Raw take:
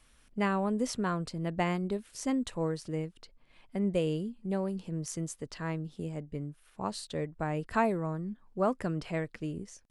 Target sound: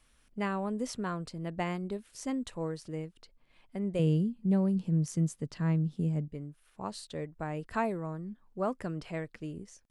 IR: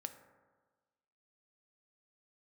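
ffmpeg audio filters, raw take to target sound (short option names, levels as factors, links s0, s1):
-filter_complex "[0:a]asettb=1/sr,asplit=3[s0][s1][s2];[s0]atrim=end=3.994[s3];[s1]atrim=start=3.99:end=6.28,asetpts=PTS-STARTPTS,afade=t=in:d=0.004:c=qsin,afade=t=out:st=2.286:d=0.004:c=qsin,equalizer=f=160:w=0.89:g=12.5[s4];[s2]atrim=start=6.276[s5];[s3][s4]acrossfade=d=0.004:c1=hsin:c2=qsin[s6];[s6][s5]acrossfade=d=0.004:c1=qsin:c2=hsin,volume=0.668"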